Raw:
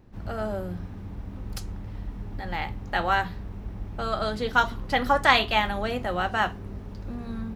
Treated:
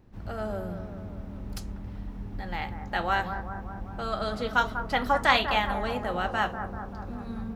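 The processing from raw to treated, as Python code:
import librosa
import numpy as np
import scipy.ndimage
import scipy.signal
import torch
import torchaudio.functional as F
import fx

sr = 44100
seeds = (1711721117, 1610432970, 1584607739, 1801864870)

y = fx.echo_bbd(x, sr, ms=195, stages=2048, feedback_pct=64, wet_db=-9.0)
y = F.gain(torch.from_numpy(y), -3.0).numpy()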